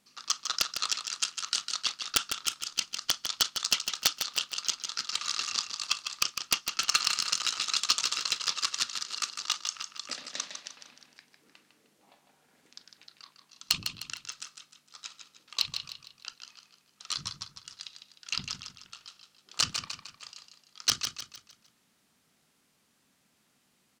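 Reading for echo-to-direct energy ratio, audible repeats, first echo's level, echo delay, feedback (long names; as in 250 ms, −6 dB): −6.5 dB, 4, −7.5 dB, 153 ms, 40%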